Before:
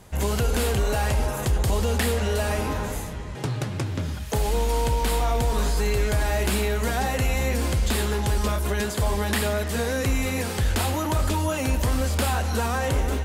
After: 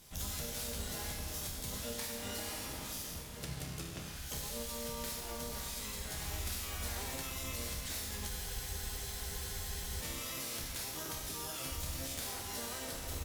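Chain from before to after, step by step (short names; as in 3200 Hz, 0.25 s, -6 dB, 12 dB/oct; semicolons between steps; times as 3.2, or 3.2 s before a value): pre-emphasis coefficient 0.8; notch 890 Hz, Q 16; comb 6.1 ms, depth 43%; feedback echo 1.059 s, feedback 18%, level -20.5 dB; compressor 6:1, threshold -37 dBFS, peak gain reduction 10.5 dB; resonator 67 Hz, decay 1.4 s, harmonics all, mix 90%; harmoniser -12 st -1 dB, +4 st -2 dB; spectral freeze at 8.31, 1.70 s; gain +9 dB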